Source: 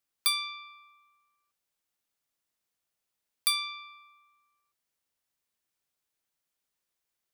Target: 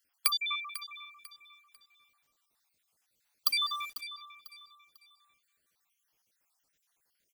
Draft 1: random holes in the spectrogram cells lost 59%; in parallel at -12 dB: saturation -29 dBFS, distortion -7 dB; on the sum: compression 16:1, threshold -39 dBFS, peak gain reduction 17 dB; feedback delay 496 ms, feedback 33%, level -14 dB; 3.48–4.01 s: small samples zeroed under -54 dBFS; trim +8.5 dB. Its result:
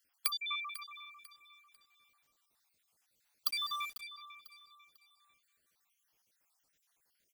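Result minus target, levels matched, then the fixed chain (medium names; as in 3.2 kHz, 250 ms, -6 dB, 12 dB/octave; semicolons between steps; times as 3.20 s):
compression: peak gain reduction +7 dB
random holes in the spectrogram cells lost 59%; in parallel at -12 dB: saturation -29 dBFS, distortion -7 dB; on the sum: compression 16:1, threshold -31.5 dBFS, peak gain reduction 10 dB; feedback delay 496 ms, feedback 33%, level -14 dB; 3.48–4.01 s: small samples zeroed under -54 dBFS; trim +8.5 dB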